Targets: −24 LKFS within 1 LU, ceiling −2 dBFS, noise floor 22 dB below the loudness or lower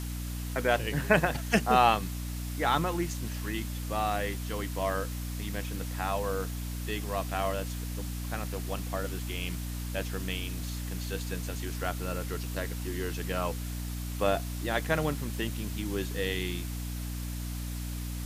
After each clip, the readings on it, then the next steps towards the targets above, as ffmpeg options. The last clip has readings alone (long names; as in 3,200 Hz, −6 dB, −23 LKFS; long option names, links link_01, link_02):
mains hum 60 Hz; hum harmonics up to 300 Hz; level of the hum −33 dBFS; background noise floor −36 dBFS; target noise floor −54 dBFS; integrated loudness −32.0 LKFS; sample peak −9.0 dBFS; target loudness −24.0 LKFS
→ -af "bandreject=frequency=60:width_type=h:width=6,bandreject=frequency=120:width_type=h:width=6,bandreject=frequency=180:width_type=h:width=6,bandreject=frequency=240:width_type=h:width=6,bandreject=frequency=300:width_type=h:width=6"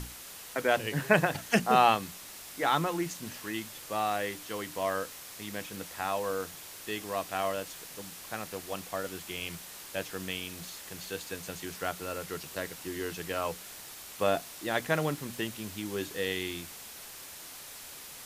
mains hum none found; background noise floor −46 dBFS; target noise floor −55 dBFS
→ -af "afftdn=noise_reduction=9:noise_floor=-46"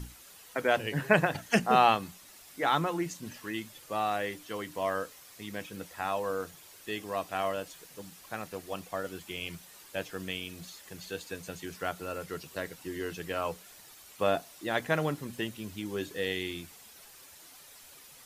background noise floor −53 dBFS; target noise floor −55 dBFS
→ -af "afftdn=noise_reduction=6:noise_floor=-53"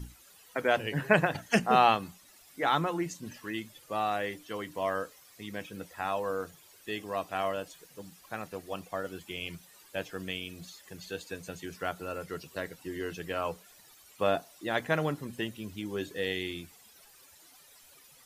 background noise floor −58 dBFS; integrated loudness −32.5 LKFS; sample peak −9.5 dBFS; target loudness −24.0 LKFS
→ -af "volume=8.5dB,alimiter=limit=-2dB:level=0:latency=1"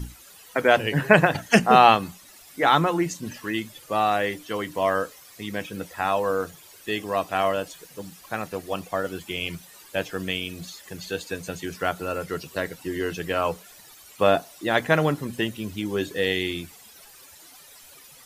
integrated loudness −24.5 LKFS; sample peak −2.0 dBFS; background noise floor −49 dBFS